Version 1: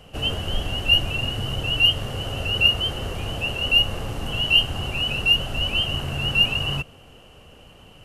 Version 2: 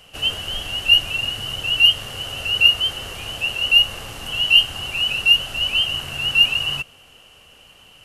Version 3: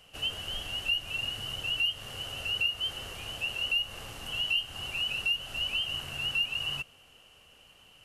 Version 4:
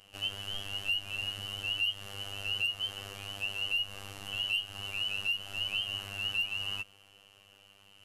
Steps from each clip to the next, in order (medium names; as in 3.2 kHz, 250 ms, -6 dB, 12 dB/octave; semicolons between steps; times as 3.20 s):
tilt shelf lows -7.5 dB; trim -1.5 dB
compression 3:1, threshold -19 dBFS, peak gain reduction 9 dB; trim -9 dB
hard clipper -22 dBFS, distortion -30 dB; robot voice 99.4 Hz